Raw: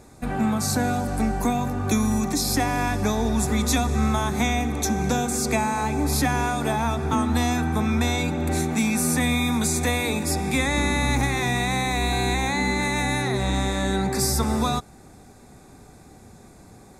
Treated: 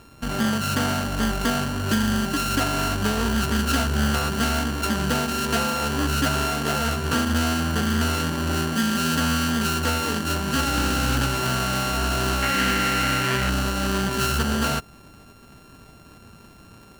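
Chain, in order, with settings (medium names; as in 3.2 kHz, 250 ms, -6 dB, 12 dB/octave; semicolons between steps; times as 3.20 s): sorted samples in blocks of 32 samples; 12.42–13.50 s: peaking EQ 2 kHz +11.5 dB 0.65 oct; loudspeaker Doppler distortion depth 0.27 ms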